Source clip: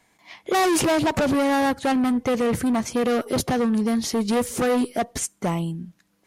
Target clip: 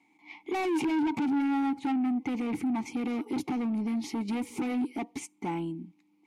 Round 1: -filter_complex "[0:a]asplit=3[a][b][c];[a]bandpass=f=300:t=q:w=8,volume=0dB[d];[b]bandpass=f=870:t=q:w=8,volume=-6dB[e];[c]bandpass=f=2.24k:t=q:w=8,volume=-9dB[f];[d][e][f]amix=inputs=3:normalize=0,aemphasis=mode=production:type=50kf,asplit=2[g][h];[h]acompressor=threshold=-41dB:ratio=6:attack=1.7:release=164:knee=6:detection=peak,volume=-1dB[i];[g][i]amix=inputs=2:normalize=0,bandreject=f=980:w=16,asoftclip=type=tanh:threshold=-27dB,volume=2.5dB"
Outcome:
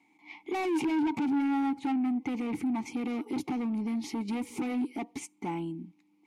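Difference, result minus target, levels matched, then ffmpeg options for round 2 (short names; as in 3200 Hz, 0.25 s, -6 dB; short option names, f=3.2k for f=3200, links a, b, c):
compressor: peak gain reduction +7.5 dB
-filter_complex "[0:a]asplit=3[a][b][c];[a]bandpass=f=300:t=q:w=8,volume=0dB[d];[b]bandpass=f=870:t=q:w=8,volume=-6dB[e];[c]bandpass=f=2.24k:t=q:w=8,volume=-9dB[f];[d][e][f]amix=inputs=3:normalize=0,aemphasis=mode=production:type=50kf,asplit=2[g][h];[h]acompressor=threshold=-32dB:ratio=6:attack=1.7:release=164:knee=6:detection=peak,volume=-1dB[i];[g][i]amix=inputs=2:normalize=0,bandreject=f=980:w=16,asoftclip=type=tanh:threshold=-27dB,volume=2.5dB"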